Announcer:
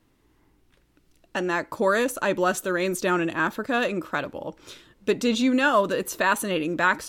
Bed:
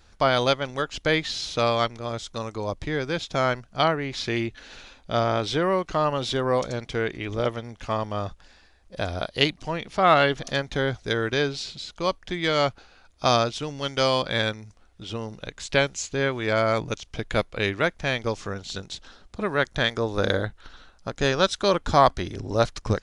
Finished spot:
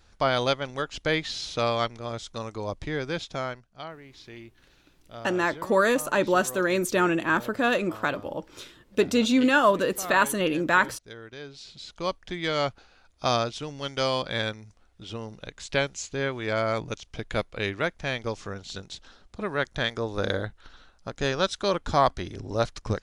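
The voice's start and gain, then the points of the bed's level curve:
3.90 s, +0.5 dB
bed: 0:03.21 −3 dB
0:03.82 −18 dB
0:11.39 −18 dB
0:11.89 −4 dB

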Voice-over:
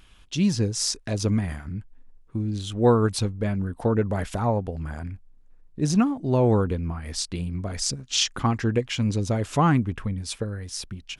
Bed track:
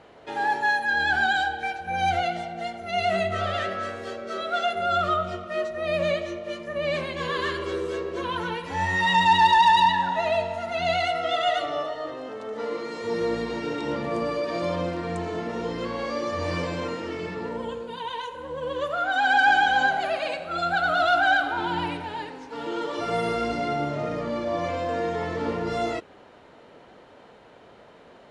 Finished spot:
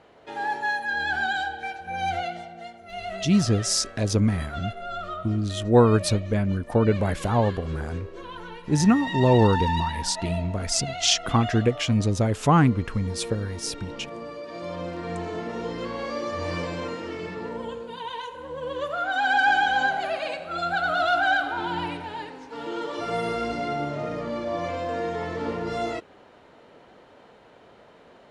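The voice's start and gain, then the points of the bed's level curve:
2.90 s, +2.0 dB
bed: 0:02.17 −3.5 dB
0:02.82 −10 dB
0:14.43 −10 dB
0:15.12 −1.5 dB

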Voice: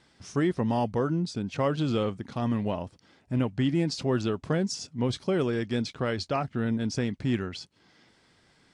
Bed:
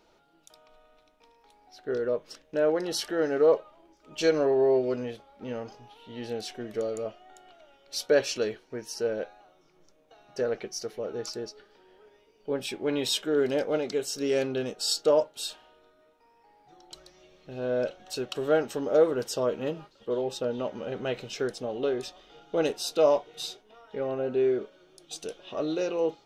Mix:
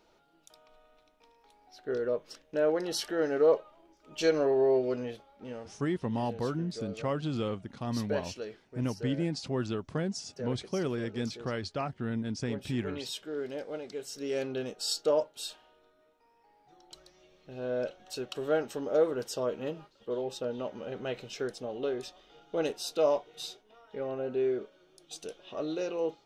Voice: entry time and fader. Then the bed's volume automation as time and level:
5.45 s, −5.5 dB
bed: 0:05.18 −2.5 dB
0:05.95 −11 dB
0:13.86 −11 dB
0:14.55 −4.5 dB

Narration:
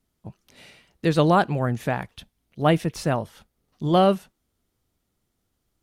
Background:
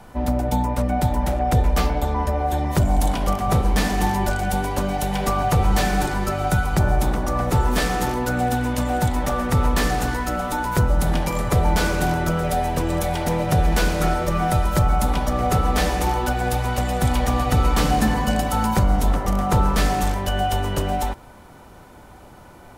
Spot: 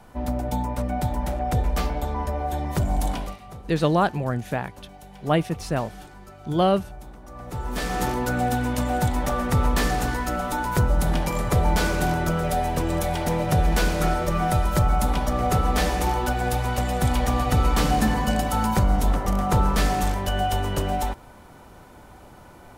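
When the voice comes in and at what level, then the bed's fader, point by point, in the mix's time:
2.65 s, −2.0 dB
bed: 0:03.19 −5 dB
0:03.39 −21.5 dB
0:07.20 −21.5 dB
0:08.02 −2 dB

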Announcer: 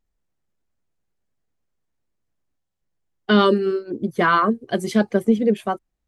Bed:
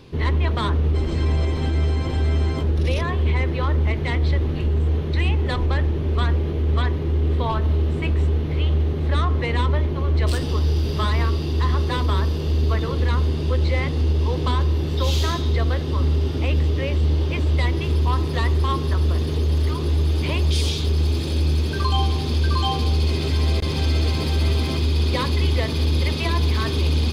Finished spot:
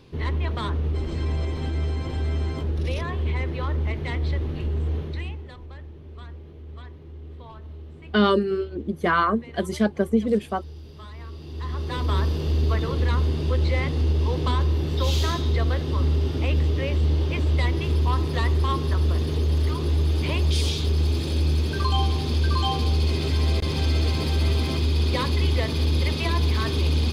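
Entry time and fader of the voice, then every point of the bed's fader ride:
4.85 s, −3.5 dB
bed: 0:05.01 −5.5 dB
0:05.55 −20 dB
0:11.15 −20 dB
0:12.16 −2 dB

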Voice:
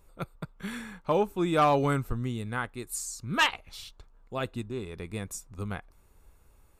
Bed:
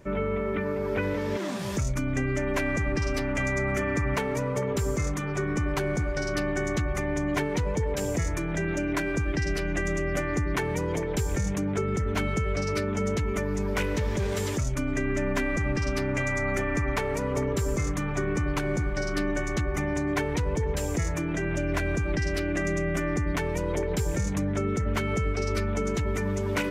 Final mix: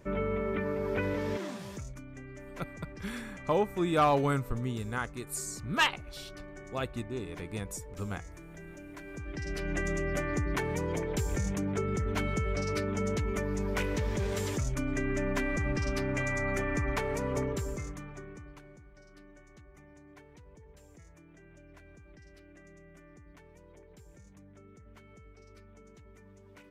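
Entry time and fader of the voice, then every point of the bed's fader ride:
2.40 s, −2.0 dB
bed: 0:01.30 −3.5 dB
0:02.07 −19 dB
0:08.95 −19 dB
0:09.73 −4 dB
0:17.41 −4 dB
0:18.81 −27.5 dB

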